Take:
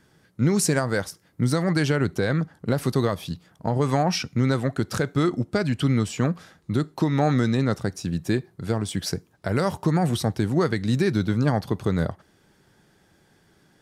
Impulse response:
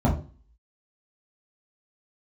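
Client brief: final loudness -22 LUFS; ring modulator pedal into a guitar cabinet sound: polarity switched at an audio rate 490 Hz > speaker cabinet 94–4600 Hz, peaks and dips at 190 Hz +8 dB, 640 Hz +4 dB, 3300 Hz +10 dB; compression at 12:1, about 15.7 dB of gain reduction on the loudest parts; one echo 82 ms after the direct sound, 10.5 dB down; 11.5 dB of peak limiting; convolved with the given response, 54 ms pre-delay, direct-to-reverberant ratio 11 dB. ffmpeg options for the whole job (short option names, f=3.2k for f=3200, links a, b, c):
-filter_complex "[0:a]acompressor=threshold=-33dB:ratio=12,alimiter=level_in=4.5dB:limit=-24dB:level=0:latency=1,volume=-4.5dB,aecho=1:1:82:0.299,asplit=2[a][b];[1:a]atrim=start_sample=2205,adelay=54[c];[b][c]afir=irnorm=-1:irlink=0,volume=-25dB[d];[a][d]amix=inputs=2:normalize=0,aeval=exprs='val(0)*sgn(sin(2*PI*490*n/s))':c=same,highpass=94,equalizer=f=190:t=q:w=4:g=8,equalizer=f=640:t=q:w=4:g=4,equalizer=f=3.3k:t=q:w=4:g=10,lowpass=f=4.6k:w=0.5412,lowpass=f=4.6k:w=1.3066,volume=9dB"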